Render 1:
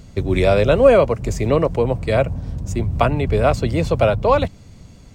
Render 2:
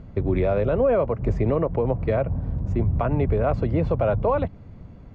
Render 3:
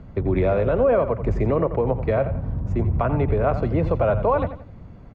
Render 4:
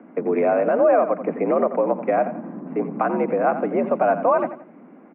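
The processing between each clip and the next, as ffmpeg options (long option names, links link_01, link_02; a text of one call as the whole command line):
ffmpeg -i in.wav -af "alimiter=limit=-12.5dB:level=0:latency=1:release=109,lowpass=1500" out.wav
ffmpeg -i in.wav -filter_complex "[0:a]acrossover=split=120|1600[link_01][link_02][link_03];[link_02]crystalizer=i=7.5:c=0[link_04];[link_01][link_04][link_03]amix=inputs=3:normalize=0,aecho=1:1:87|174|261:0.266|0.0878|0.029" out.wav
ffmpeg -i in.wav -af "highpass=frequency=160:width_type=q:width=0.5412,highpass=frequency=160:width_type=q:width=1.307,lowpass=frequency=2400:width_type=q:width=0.5176,lowpass=frequency=2400:width_type=q:width=0.7071,lowpass=frequency=2400:width_type=q:width=1.932,afreqshift=67,volume=2dB" out.wav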